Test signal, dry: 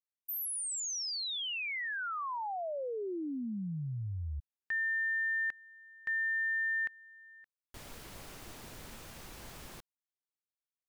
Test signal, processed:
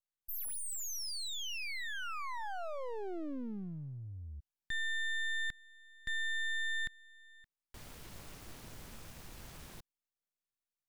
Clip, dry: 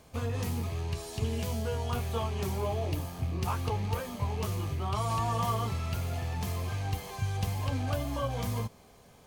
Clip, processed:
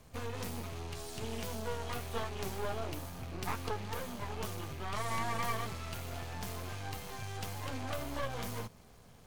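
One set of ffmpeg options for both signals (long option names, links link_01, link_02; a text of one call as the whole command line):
ffmpeg -i in.wav -filter_complex "[0:a]acrossover=split=210[link_01][link_02];[link_01]acompressor=threshold=-46dB:ratio=6:attack=2.2:release=25:knee=6:detection=rms[link_03];[link_02]aeval=exprs='max(val(0),0)':channel_layout=same[link_04];[link_03][link_04]amix=inputs=2:normalize=0,volume=1dB" out.wav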